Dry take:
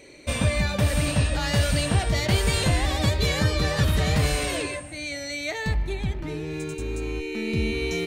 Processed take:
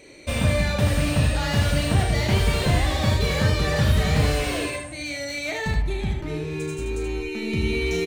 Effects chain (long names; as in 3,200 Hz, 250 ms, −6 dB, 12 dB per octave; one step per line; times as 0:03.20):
ambience of single reflections 34 ms −7 dB, 78 ms −5 dB
slew-rate limiting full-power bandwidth 140 Hz